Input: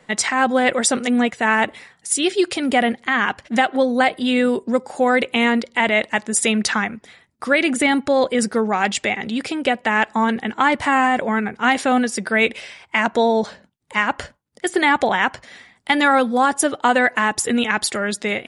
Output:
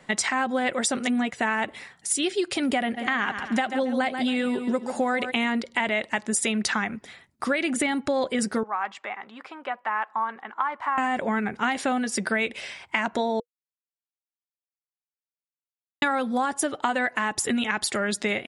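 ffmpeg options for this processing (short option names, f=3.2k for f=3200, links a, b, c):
-filter_complex "[0:a]asplit=3[a][b][c];[a]afade=t=out:st=2.96:d=0.02[d];[b]aecho=1:1:138|276|414|552:0.282|0.101|0.0365|0.0131,afade=t=in:st=2.96:d=0.02,afade=t=out:st=5.3:d=0.02[e];[c]afade=t=in:st=5.3:d=0.02[f];[d][e][f]amix=inputs=3:normalize=0,asettb=1/sr,asplit=3[g][h][i];[g]atrim=end=8.634[j];[h]atrim=start=8.63:end=10.98,asetpts=PTS-STARTPTS,afade=t=in:d=0.004:c=qsin,afade=t=out:st=2.346:d=0.004:c=qsin,bandpass=f=1.1k:t=q:w=3.2[k];[i]atrim=start=10.976[l];[j][k]acrossfade=d=0.004:c1=hsin:c2=qsin[m];[m][l]acrossfade=d=0.004:c1=qsin:c2=hsin,asplit=3[n][o][p];[n]atrim=end=13.4,asetpts=PTS-STARTPTS,afade=t=out:st=13.396:d=0.004:c=hsin[q];[o]atrim=start=13.4:end=16.02,asetpts=PTS-STARTPTS,volume=0[r];[p]atrim=start=16.02,asetpts=PTS-STARTPTS,afade=t=in:d=0.004:c=hsin[s];[q][r][s]concat=n=3:v=0:a=1,deesser=0.25,bandreject=f=480:w=12,acompressor=threshold=-22dB:ratio=6"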